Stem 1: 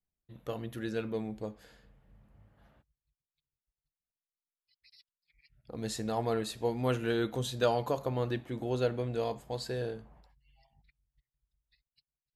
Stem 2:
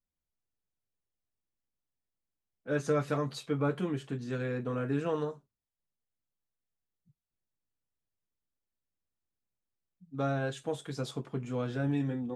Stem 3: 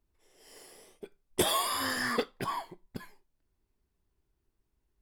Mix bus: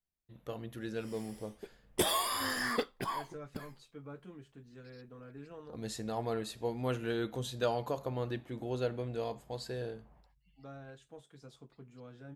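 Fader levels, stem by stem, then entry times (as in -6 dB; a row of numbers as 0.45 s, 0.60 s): -4.0 dB, -17.5 dB, -2.5 dB; 0.00 s, 0.45 s, 0.60 s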